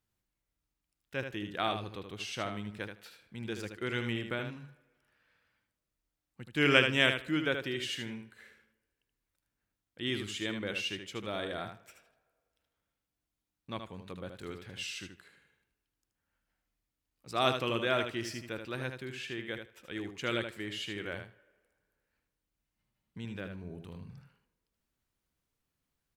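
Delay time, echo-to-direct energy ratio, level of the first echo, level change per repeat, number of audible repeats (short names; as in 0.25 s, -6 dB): 77 ms, -7.0 dB, -7.0 dB, -16.5 dB, 2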